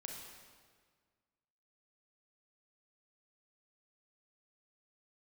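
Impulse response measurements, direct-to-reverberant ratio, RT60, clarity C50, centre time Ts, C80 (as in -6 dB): 0.0 dB, 1.7 s, 1.5 dB, 75 ms, 3.5 dB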